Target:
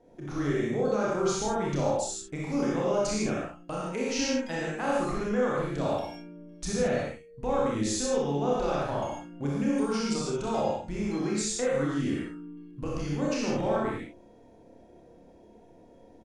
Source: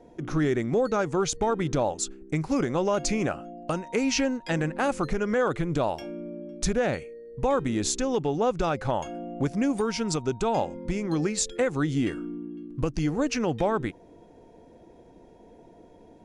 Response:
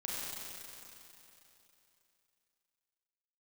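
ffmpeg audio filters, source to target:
-filter_complex "[0:a]aecho=1:1:28|62:0.531|0.531[s0];[1:a]atrim=start_sample=2205,afade=t=out:st=0.23:d=0.01,atrim=end_sample=10584,asetrate=48510,aresample=44100[s1];[s0][s1]afir=irnorm=-1:irlink=0,volume=0.631"

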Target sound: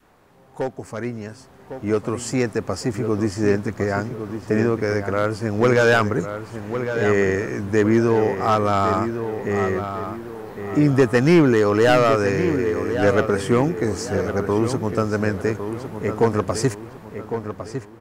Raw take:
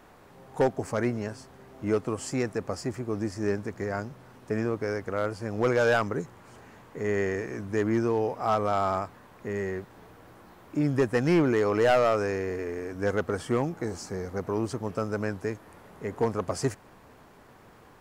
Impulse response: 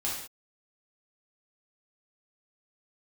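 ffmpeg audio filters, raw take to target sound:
-filter_complex "[0:a]adynamicequalizer=threshold=0.0112:dfrequency=680:dqfactor=1.2:tfrequency=680:tqfactor=1.2:attack=5:release=100:ratio=0.375:range=2.5:mode=cutabove:tftype=bell,dynaudnorm=f=770:g=5:m=3.76,asettb=1/sr,asplit=3[s0][s1][s2];[s0]atrim=end=11.474[s3];[s1]atrim=start=11.47:end=11.94,asetpts=PTS-STARTPTS,afade=t=in:d=0.004:c=qsin,afade=t=out:st=0.466:d=0.004:c=qsin,equalizer=f=2200:w=6.4:g=-7[s4];[s2]atrim=start=11.936[s5];[s3][s4]acrossfade=d=0.004:c1=hsin:c2=qsin[s6];[s6][s5]acrossfade=d=0.004:c1=qsin:c2=hsin,asplit=2[s7][s8];[s8]adelay=1106,lowpass=f=3000:p=1,volume=0.376,asplit=2[s9][s10];[s10]adelay=1106,lowpass=f=3000:p=1,volume=0.38,asplit=2[s11][s12];[s12]adelay=1106,lowpass=f=3000:p=1,volume=0.38,asplit=2[s13][s14];[s14]adelay=1106,lowpass=f=3000:p=1,volume=0.38[s15];[s7][s9][s11][s13][s15]amix=inputs=5:normalize=0,volume=0.794"

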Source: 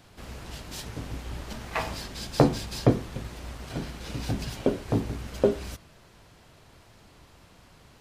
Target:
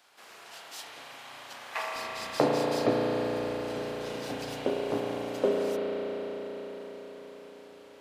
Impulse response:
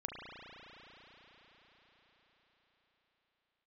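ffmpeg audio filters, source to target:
-filter_complex "[0:a]asetnsamples=n=441:p=0,asendcmd='1.96 highpass f 300',highpass=720[s0];[1:a]atrim=start_sample=2205[s1];[s0][s1]afir=irnorm=-1:irlink=0"

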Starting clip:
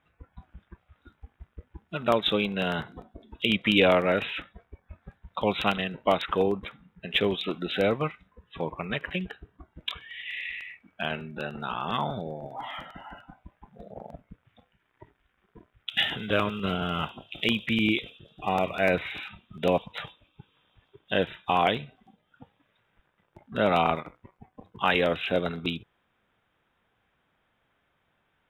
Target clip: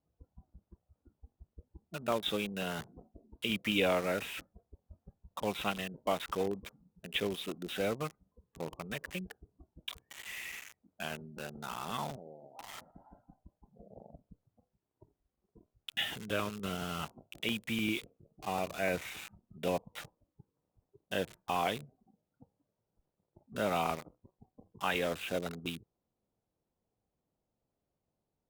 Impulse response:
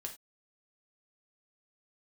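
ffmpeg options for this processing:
-filter_complex "[0:a]asettb=1/sr,asplit=3[s0][s1][s2];[s0]atrim=end=12.164[s3];[s1]atrim=start=12.16:end=12.82,asetpts=PTS-STARTPTS,afade=t=in:d=0.004:c=qsin,afade=t=out:st=0.656:d=0.004:c=qsin,highpass=f=530:p=1[s4];[s2]atrim=start=12.816[s5];[s3][s4]acrossfade=d=0.004:c1=hsin:c2=qsin[s6];[s6][s5]acrossfade=d=0.004:c1=qsin:c2=hsin,acrossover=split=800[s7][s8];[s8]acrusher=bits=5:mix=0:aa=0.000001[s9];[s7][s9]amix=inputs=2:normalize=0,volume=0.355" -ar 48000 -c:a libopus -b:a 128k

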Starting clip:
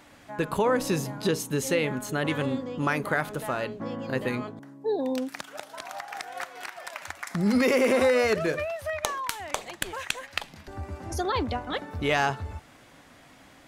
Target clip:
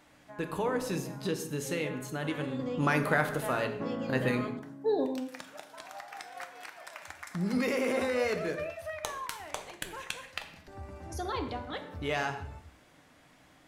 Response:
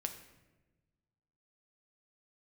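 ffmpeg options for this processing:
-filter_complex "[0:a]asettb=1/sr,asplit=3[s0][s1][s2];[s0]atrim=end=2.594[s3];[s1]atrim=start=2.59:end=5.06,asetpts=PTS-STARTPTS,afade=t=in:d=0.004:c=qsin,afade=t=out:st=2.466:d=0.004:c=qsin,acontrast=81[s4];[s2]atrim=start=5.056[s5];[s3][s4]acrossfade=d=0.004:c1=hsin:c2=qsin[s6];[s6][s5]acrossfade=d=0.004:c1=qsin:c2=hsin[s7];[1:a]atrim=start_sample=2205,afade=t=out:st=0.26:d=0.01,atrim=end_sample=11907[s8];[s7][s8]afir=irnorm=-1:irlink=0,volume=0.473"

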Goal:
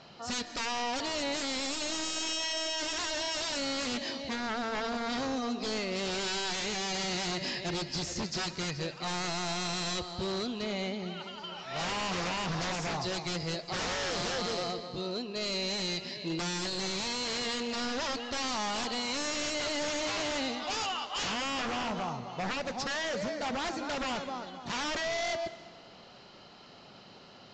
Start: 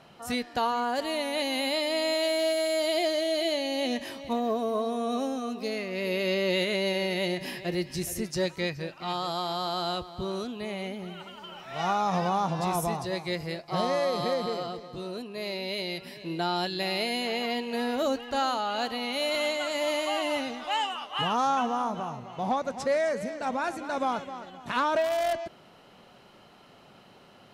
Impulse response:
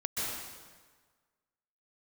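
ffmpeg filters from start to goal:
-filter_complex "[0:a]equalizer=f=4600:t=o:w=0.6:g=10,aeval=exprs='0.0376*(abs(mod(val(0)/0.0376+3,4)-2)-1)':c=same,asplit=2[s0][s1];[1:a]atrim=start_sample=2205[s2];[s1][s2]afir=irnorm=-1:irlink=0,volume=0.106[s3];[s0][s3]amix=inputs=2:normalize=0,aresample=16000,aresample=44100" -ar 44100 -c:a libmp3lame -b:a 64k

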